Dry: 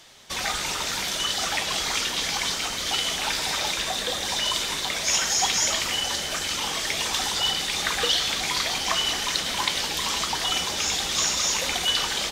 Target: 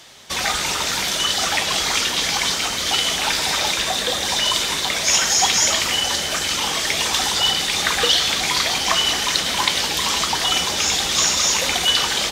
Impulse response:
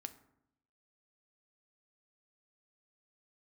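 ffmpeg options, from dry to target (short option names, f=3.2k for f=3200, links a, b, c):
-af "highpass=42,volume=6dB"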